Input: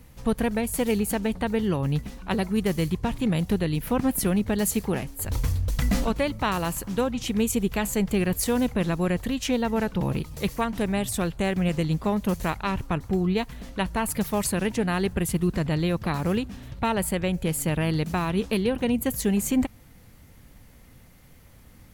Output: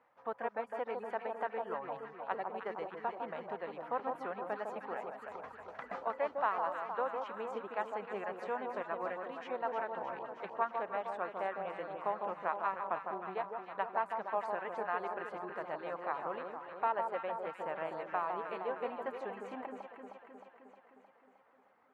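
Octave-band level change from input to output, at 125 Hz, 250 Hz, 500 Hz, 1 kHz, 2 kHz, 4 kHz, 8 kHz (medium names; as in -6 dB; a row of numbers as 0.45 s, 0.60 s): -33.5 dB, -26.0 dB, -10.0 dB, -3.5 dB, -10.0 dB, -23.5 dB, under -40 dB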